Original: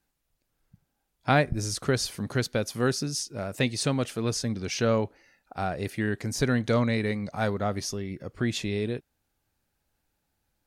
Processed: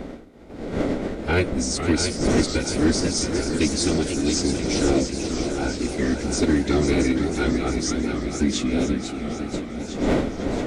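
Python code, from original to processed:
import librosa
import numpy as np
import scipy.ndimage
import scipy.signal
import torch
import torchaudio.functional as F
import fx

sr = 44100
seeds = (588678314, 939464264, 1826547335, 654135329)

p1 = fx.dmg_wind(x, sr, seeds[0], corner_hz=600.0, level_db=-31.0)
p2 = fx.peak_eq(p1, sr, hz=3100.0, db=2.0, octaves=1.0)
p3 = fx.notch(p2, sr, hz=2800.0, q=6.6)
p4 = fx.pitch_keep_formants(p3, sr, semitones=-8.5)
p5 = fx.graphic_eq(p4, sr, hz=(125, 250, 1000, 8000), db=(-8, 6, -11, 5))
p6 = np.clip(p5, -10.0 ** (-17.0 / 20.0), 10.0 ** (-17.0 / 20.0))
p7 = p6 + fx.echo_feedback(p6, sr, ms=676, feedback_pct=55, wet_db=-8, dry=0)
p8 = fx.spec_freeze(p7, sr, seeds[1], at_s=9.02, hold_s=0.52)
p9 = fx.echo_warbled(p8, sr, ms=493, feedback_pct=63, rate_hz=2.8, cents=216, wet_db=-8.0)
y = p9 * 10.0 ** (4.0 / 20.0)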